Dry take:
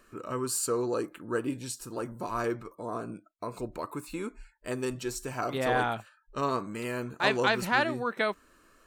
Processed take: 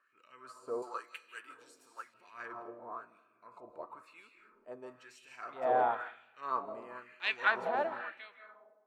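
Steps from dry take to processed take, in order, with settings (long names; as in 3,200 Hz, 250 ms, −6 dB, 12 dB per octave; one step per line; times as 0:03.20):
fade-out on the ending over 1.31 s
transient designer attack −5 dB, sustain +4 dB
comb and all-pass reverb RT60 1.2 s, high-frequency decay 0.6×, pre-delay 120 ms, DRR 6 dB
auto-filter band-pass sine 1 Hz 650–2,700 Hz
0:00.82–0:02.14: spectral tilt +4.5 dB per octave
expander for the loud parts 1.5 to 1, over −50 dBFS
level +4 dB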